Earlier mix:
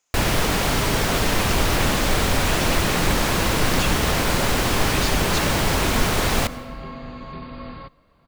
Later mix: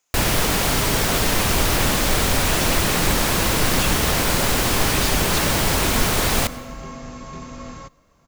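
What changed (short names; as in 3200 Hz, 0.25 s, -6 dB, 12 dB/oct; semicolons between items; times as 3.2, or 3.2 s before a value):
first sound: add high shelf 5800 Hz +7 dB; second sound: remove brick-wall FIR low-pass 4900 Hz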